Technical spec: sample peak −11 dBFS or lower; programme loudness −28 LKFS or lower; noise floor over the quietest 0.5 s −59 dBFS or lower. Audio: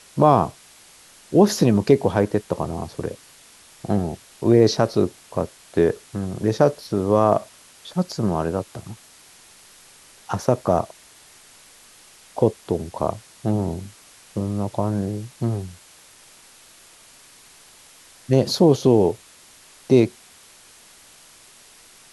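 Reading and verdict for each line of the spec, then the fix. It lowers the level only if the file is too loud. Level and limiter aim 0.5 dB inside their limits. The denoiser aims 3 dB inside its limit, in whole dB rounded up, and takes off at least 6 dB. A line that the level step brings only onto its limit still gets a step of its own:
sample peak −2.0 dBFS: out of spec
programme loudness −21.5 LKFS: out of spec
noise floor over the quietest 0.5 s −49 dBFS: out of spec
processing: broadband denoise 6 dB, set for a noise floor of −49 dBFS
level −7 dB
brickwall limiter −11.5 dBFS

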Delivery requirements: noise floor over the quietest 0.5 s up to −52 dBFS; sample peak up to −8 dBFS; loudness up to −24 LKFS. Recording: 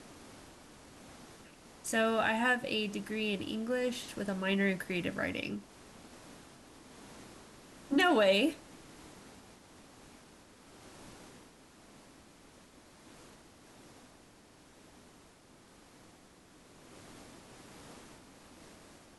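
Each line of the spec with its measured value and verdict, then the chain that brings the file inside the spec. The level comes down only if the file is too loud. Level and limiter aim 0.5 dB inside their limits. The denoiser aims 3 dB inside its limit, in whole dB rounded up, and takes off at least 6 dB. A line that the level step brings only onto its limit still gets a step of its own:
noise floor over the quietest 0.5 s −60 dBFS: in spec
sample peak −16.0 dBFS: in spec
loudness −31.5 LKFS: in spec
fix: no processing needed

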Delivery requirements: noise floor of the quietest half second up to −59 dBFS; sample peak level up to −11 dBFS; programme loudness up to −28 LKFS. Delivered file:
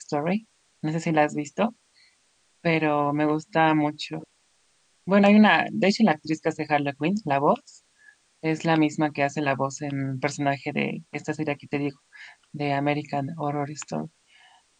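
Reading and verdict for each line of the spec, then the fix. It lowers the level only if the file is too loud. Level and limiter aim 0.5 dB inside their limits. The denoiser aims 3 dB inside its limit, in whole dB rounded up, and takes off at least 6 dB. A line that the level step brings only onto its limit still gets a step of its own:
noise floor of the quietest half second −65 dBFS: in spec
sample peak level −6.0 dBFS: out of spec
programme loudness −24.5 LKFS: out of spec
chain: level −4 dB
brickwall limiter −11.5 dBFS

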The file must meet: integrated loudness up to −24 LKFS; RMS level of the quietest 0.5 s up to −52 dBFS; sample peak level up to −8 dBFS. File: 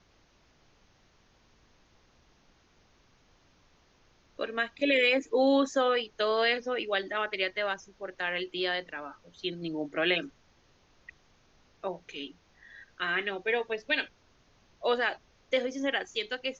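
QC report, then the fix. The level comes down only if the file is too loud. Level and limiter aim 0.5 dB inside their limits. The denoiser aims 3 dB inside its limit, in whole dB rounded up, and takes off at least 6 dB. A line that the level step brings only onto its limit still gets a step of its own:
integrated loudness −30.0 LKFS: in spec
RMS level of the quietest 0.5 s −65 dBFS: in spec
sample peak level −14.0 dBFS: in spec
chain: no processing needed

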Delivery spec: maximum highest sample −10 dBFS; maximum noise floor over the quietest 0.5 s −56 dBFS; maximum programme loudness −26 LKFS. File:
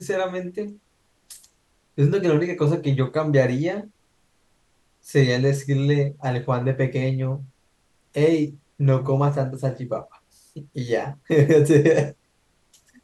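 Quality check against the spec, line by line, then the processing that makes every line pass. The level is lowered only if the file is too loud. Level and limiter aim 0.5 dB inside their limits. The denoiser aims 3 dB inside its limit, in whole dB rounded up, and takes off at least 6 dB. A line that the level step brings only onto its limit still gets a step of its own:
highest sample −4.5 dBFS: out of spec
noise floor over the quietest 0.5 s −65 dBFS: in spec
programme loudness −22.0 LKFS: out of spec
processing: level −4.5 dB
brickwall limiter −10.5 dBFS

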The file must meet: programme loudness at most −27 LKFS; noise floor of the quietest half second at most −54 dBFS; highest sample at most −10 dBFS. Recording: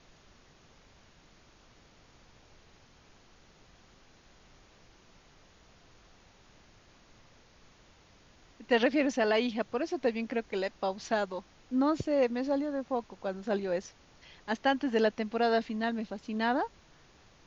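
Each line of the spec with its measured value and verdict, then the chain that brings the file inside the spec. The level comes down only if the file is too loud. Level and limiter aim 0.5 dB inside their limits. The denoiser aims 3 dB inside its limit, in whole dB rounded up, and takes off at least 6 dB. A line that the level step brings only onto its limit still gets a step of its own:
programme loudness −31.0 LKFS: in spec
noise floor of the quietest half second −60 dBFS: in spec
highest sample −13.5 dBFS: in spec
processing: no processing needed

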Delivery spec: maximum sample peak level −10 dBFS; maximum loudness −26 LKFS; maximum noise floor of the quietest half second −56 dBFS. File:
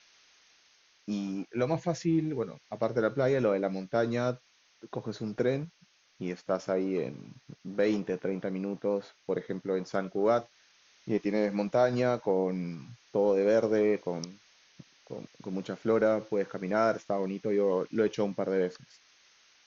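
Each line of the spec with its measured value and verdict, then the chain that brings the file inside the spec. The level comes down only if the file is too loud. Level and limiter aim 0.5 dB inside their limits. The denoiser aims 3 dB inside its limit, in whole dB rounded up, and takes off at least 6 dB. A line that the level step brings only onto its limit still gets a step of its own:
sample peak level −13.0 dBFS: in spec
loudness −30.5 LKFS: in spec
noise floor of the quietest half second −65 dBFS: in spec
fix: no processing needed

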